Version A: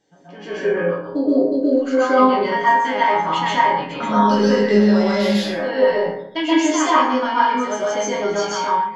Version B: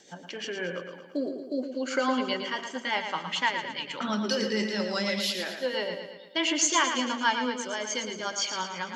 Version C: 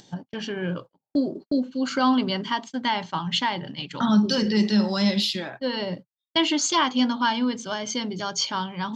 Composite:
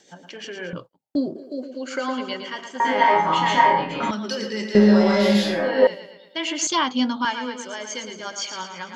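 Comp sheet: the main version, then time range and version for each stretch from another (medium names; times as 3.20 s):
B
0.73–1.36 s: from C
2.80–4.11 s: from A
4.75–5.87 s: from A
6.67–7.25 s: from C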